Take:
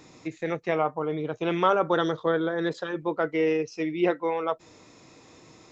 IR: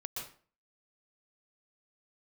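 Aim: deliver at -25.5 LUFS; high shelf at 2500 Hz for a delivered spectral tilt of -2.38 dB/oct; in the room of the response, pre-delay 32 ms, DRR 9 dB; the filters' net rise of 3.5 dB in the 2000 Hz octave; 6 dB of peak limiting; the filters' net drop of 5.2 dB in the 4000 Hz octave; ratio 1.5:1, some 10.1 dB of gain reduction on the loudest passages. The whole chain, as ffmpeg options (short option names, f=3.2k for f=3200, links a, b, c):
-filter_complex "[0:a]equalizer=f=2k:t=o:g=8,highshelf=f=2.5k:g=-5,equalizer=f=4k:t=o:g=-6,acompressor=threshold=-46dB:ratio=1.5,alimiter=level_in=0.5dB:limit=-24dB:level=0:latency=1,volume=-0.5dB,asplit=2[a][b];[1:a]atrim=start_sample=2205,adelay=32[c];[b][c]afir=irnorm=-1:irlink=0,volume=-9dB[d];[a][d]amix=inputs=2:normalize=0,volume=10.5dB"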